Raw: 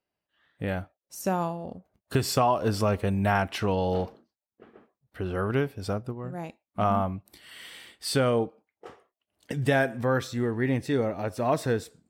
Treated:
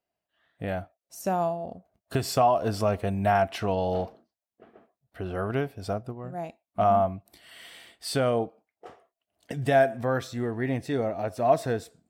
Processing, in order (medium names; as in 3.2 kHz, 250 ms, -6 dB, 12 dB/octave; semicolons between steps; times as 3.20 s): peaking EQ 680 Hz +11 dB 0.24 oct; trim -2.5 dB